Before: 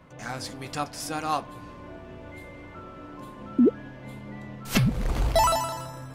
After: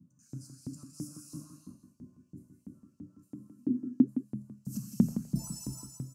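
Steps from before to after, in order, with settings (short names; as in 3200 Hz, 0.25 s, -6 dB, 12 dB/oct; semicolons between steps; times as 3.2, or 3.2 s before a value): inverse Chebyshev band-stop 410–3700 Hz, stop band 40 dB; tone controls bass +12 dB, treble -14 dB; 5.08–5.69 comb 5.7 ms, depth 64%; non-linear reverb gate 0.4 s flat, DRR -1 dB; LFO high-pass saw up 3 Hz 260–3900 Hz; on a send: echo 0.165 s -10 dB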